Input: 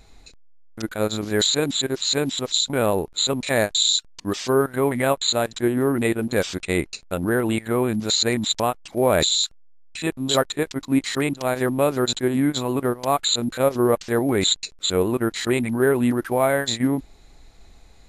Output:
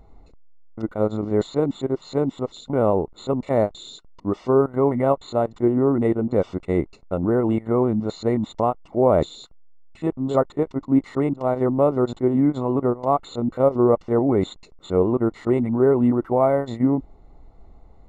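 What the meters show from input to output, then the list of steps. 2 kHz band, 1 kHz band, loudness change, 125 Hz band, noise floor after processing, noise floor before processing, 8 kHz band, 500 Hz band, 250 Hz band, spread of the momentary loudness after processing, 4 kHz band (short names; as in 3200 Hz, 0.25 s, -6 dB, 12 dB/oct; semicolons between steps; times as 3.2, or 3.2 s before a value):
-13.5 dB, +0.5 dB, 0.0 dB, +2.0 dB, -50 dBFS, -50 dBFS, under -20 dB, +2.0 dB, +2.0 dB, 8 LU, -20.5 dB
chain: polynomial smoothing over 65 samples; gain +2 dB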